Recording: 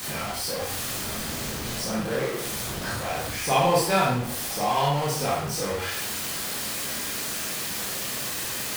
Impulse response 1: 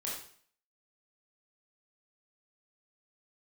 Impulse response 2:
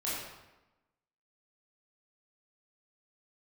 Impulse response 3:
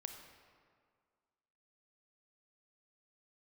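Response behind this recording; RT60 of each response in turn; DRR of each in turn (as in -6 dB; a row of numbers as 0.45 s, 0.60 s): 1; 0.55 s, 1.0 s, 2.0 s; -5.5 dB, -9.0 dB, 5.0 dB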